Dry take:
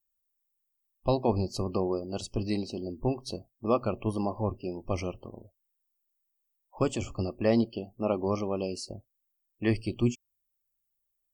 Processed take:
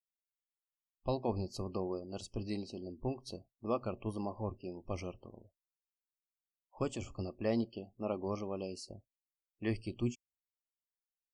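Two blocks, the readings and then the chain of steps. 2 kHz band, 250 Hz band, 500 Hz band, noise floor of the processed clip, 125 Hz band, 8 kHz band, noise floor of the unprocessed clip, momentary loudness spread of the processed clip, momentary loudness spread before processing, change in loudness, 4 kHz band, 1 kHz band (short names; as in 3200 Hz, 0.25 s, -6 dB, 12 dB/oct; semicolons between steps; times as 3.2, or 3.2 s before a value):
-8.5 dB, -8.5 dB, -8.5 dB, under -85 dBFS, -8.5 dB, -8.5 dB, -80 dBFS, 11 LU, 11 LU, -8.5 dB, -8.5 dB, -8.5 dB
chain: spectral noise reduction 14 dB; gain -8.5 dB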